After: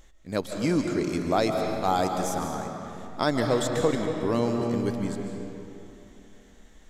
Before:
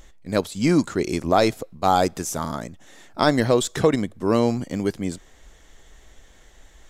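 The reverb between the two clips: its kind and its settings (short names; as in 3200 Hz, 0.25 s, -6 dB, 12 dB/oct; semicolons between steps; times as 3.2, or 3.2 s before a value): digital reverb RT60 3 s, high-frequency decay 0.65×, pre-delay 0.105 s, DRR 3 dB; gain -6.5 dB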